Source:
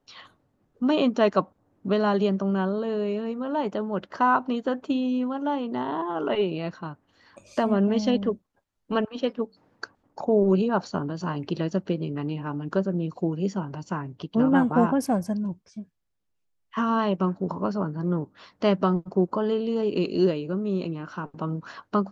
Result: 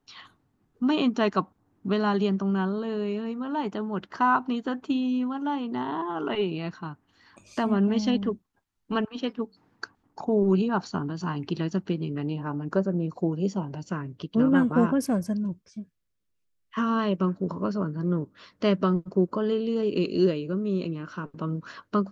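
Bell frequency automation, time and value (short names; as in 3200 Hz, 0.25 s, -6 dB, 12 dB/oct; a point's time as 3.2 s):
bell -11 dB 0.48 oct
12.07 s 560 Hz
12.48 s 3300 Hz
13.11 s 3300 Hz
14 s 800 Hz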